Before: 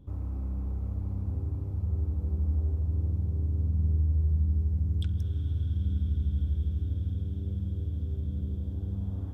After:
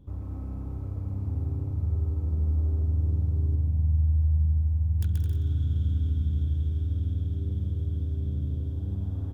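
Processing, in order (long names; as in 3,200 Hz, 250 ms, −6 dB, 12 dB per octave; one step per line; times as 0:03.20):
stylus tracing distortion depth 0.38 ms
0:03.55–0:05.01: phaser with its sweep stopped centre 1,400 Hz, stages 6
bouncing-ball delay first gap 130 ms, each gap 0.65×, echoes 5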